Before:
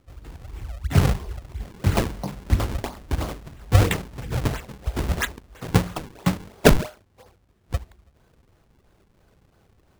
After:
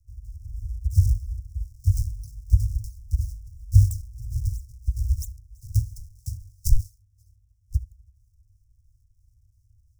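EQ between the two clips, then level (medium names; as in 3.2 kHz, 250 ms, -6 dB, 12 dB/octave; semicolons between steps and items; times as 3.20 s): Chebyshev band-stop 110–5400 Hz, order 5; bass shelf 230 Hz +8.5 dB; -5.0 dB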